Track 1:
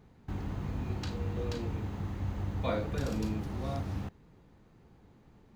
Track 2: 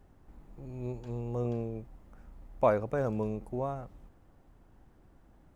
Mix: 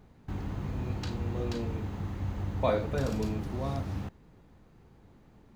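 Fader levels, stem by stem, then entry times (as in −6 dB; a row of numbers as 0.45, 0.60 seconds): +1.0, −5.0 decibels; 0.00, 0.00 seconds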